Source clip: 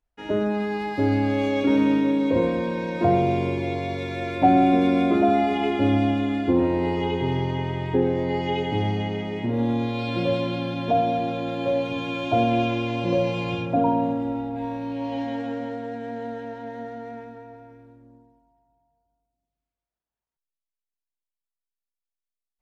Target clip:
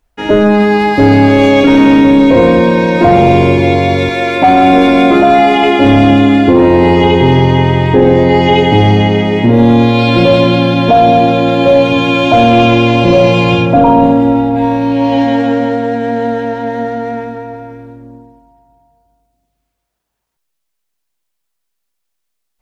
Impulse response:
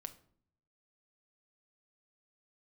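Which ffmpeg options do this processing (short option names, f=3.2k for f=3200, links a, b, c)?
-filter_complex "[0:a]asettb=1/sr,asplit=3[a][b][c];[a]atrim=end=4.094[d];[b]atrim=start=4.09:end=5.85,asetpts=PTS-STARTPTS,afade=t=in:d=0.004:c=qsin,afade=t=out:st=1.756:d=0.004:c=qsin,highpass=f=390:p=1[e];[c]atrim=start=5.846[f];[d][e]acrossfade=d=0.004:c1=hsin:c2=qsin[g];[g][f]acrossfade=d=0.004:c1=qsin:c2=hsin,apsyclip=19.5dB,volume=-1.5dB"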